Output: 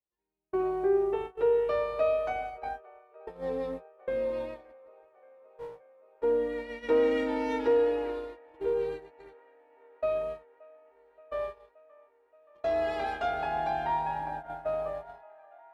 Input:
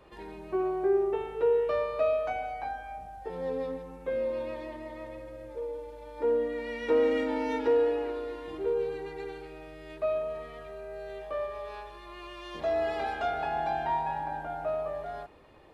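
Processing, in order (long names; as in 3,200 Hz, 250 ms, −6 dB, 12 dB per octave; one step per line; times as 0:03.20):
0:05.06–0:06.18: lower of the sound and its delayed copy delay 8.9 ms
noise gate −35 dBFS, range −46 dB
delay with a band-pass on its return 575 ms, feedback 75%, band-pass 1,100 Hz, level −23 dB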